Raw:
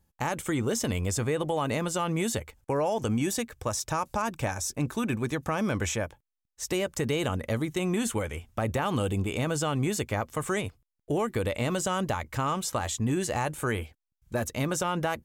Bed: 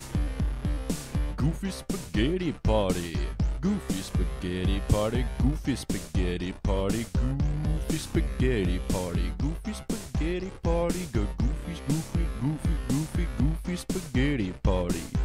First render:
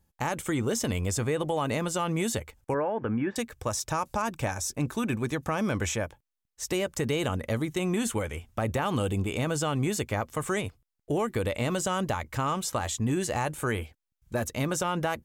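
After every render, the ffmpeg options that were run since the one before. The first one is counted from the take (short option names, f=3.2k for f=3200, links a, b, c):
-filter_complex "[0:a]asettb=1/sr,asplit=3[a][b][c];[a]atrim=end=2.744[d];[b]atrim=start=2.74:end=3.36,asetpts=PTS-STARTPTS,afade=t=in:d=0.004:c=qsin,afade=t=out:st=0.616:d=0.004:c=qsin,highpass=110,equalizer=f=160:t=q:w=4:g=-6,equalizer=f=700:t=q:w=4:g=-5,equalizer=f=1.6k:t=q:w=4:g=7,lowpass=f=2.1k:w=0.5412,lowpass=f=2.1k:w=1.3066[e];[c]atrim=start=3.356[f];[d][e]acrossfade=d=0.004:c1=hsin:c2=qsin[g];[g][f]acrossfade=d=0.004:c1=qsin:c2=hsin"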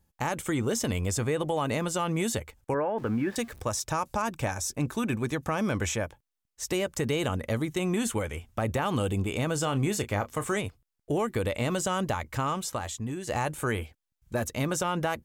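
-filter_complex "[0:a]asettb=1/sr,asplit=3[a][b][c];[a]atrim=end=2.984[d];[b]atrim=start=2.98:end=3.62,asetpts=PTS-STARTPTS,afade=t=in:d=0.004:c=qsin,afade=t=out:st=0.636:d=0.004:c=qsin,aeval=exprs='val(0)+0.5*0.00531*sgn(val(0))':c=same[e];[c]atrim=start=3.616[f];[d][e]acrossfade=d=0.004:c1=hsin:c2=qsin[g];[g][f]acrossfade=d=0.004:c1=qsin:c2=hsin,asettb=1/sr,asplit=3[h][i][j];[h]atrim=end=9.544[k];[i]atrim=start=9.54:end=10.57,asetpts=PTS-STARTPTS,afade=t=in:d=0.004:c=qsin,afade=t=out:st=1.026:d=0.004:c=qsin,asplit=2[l][m];[m]adelay=30,volume=-12dB[n];[l][n]amix=inputs=2:normalize=0,atrim=end_sample=45423[o];[j]atrim=start=10.566[p];[k][o]acrossfade=d=0.004:c1=hsin:c2=qsin[q];[q][p]acrossfade=d=0.004:c1=qsin:c2=hsin,asplit=2[r][s];[r]atrim=end=13.27,asetpts=PTS-STARTPTS,afade=t=out:st=12.37:d=0.9:silence=0.334965[t];[s]atrim=start=13.27,asetpts=PTS-STARTPTS,afade=t=in:d=0.004:c=hsin:silence=0.334965[u];[t][u]concat=n=2:v=0:a=1"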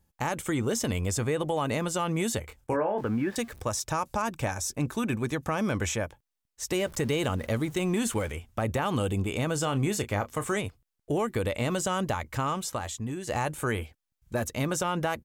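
-filter_complex "[0:a]asplit=3[a][b][c];[a]afade=t=out:st=2.42:d=0.02[d];[b]asplit=2[e][f];[f]adelay=25,volume=-6dB[g];[e][g]amix=inputs=2:normalize=0,afade=t=in:st=2.42:d=0.02,afade=t=out:st=3.01:d=0.02[h];[c]afade=t=in:st=3.01:d=0.02[i];[d][h][i]amix=inputs=3:normalize=0,asettb=1/sr,asplit=3[j][k][l];[j]atrim=end=6.754[m];[k]atrim=start=6.75:end=8.32,asetpts=PTS-STARTPTS,afade=t=in:d=0.004:c=qsin,afade=t=out:st=1.566:d=0.004:c=qsin,aeval=exprs='val(0)+0.5*0.00668*sgn(val(0))':c=same[n];[l]atrim=start=8.316[o];[m][n]acrossfade=d=0.004:c1=hsin:c2=qsin[p];[p][o]acrossfade=d=0.004:c1=qsin:c2=hsin"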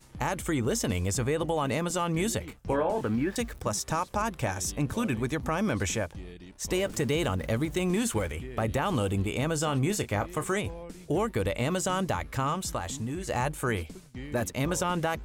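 -filter_complex "[1:a]volume=-15.5dB[a];[0:a][a]amix=inputs=2:normalize=0"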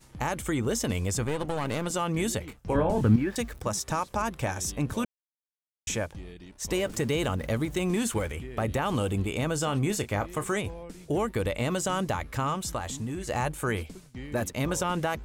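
-filter_complex "[0:a]asettb=1/sr,asplit=3[a][b][c];[a]atrim=end=1.244[d];[b]atrim=start=1.24:end=1.87,asetpts=PTS-STARTPTS,afade=t=in:d=0.004:c=qsin,afade=t=out:st=0.626:d=0.004:c=qsin,aeval=exprs='clip(val(0),-1,0.0141)':c=same[e];[c]atrim=start=1.866[f];[d][e]acrossfade=d=0.004:c1=hsin:c2=qsin[g];[g][f]acrossfade=d=0.004:c1=qsin:c2=hsin,asettb=1/sr,asplit=3[h][i][j];[h]atrim=end=2.754[k];[i]atrim=start=2.75:end=3.16,asetpts=PTS-STARTPTS,afade=t=in:d=0.004:c=qsin,afade=t=out:st=0.406:d=0.004:c=qsin,bass=f=250:g=14,treble=f=4k:g=3[l];[j]atrim=start=3.156[m];[k][l]acrossfade=d=0.004:c1=hsin:c2=qsin[n];[n][m]acrossfade=d=0.004:c1=qsin:c2=hsin,asplit=3[o][p][q];[o]atrim=end=5.05,asetpts=PTS-STARTPTS,afade=t=out:st=5.046:d=0.004:c=hsin[r];[p]atrim=start=5.05:end=5.87,asetpts=PTS-STARTPTS,volume=0[s];[q]atrim=start=5.87,asetpts=PTS-STARTPTS,afade=t=in:d=0.004:c=hsin[t];[r][s][t]concat=n=3:v=0:a=1"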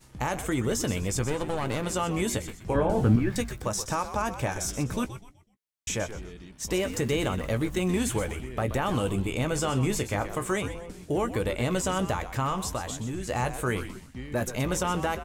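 -filter_complex "[0:a]asplit=2[a][b];[b]adelay=16,volume=-11.5dB[c];[a][c]amix=inputs=2:normalize=0,asplit=2[d][e];[e]asplit=4[f][g][h][i];[f]adelay=125,afreqshift=-110,volume=-11dB[j];[g]adelay=250,afreqshift=-220,volume=-20.6dB[k];[h]adelay=375,afreqshift=-330,volume=-30.3dB[l];[i]adelay=500,afreqshift=-440,volume=-39.9dB[m];[j][k][l][m]amix=inputs=4:normalize=0[n];[d][n]amix=inputs=2:normalize=0"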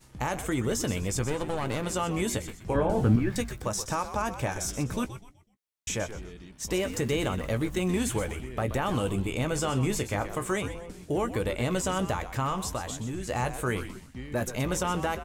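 -af "volume=-1dB"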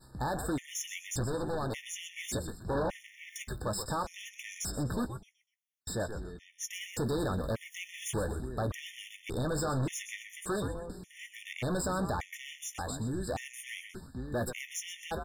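-af "volume=28dB,asoftclip=hard,volume=-28dB,afftfilt=real='re*gt(sin(2*PI*0.86*pts/sr)*(1-2*mod(floor(b*sr/1024/1800),2)),0)':imag='im*gt(sin(2*PI*0.86*pts/sr)*(1-2*mod(floor(b*sr/1024/1800),2)),0)':win_size=1024:overlap=0.75"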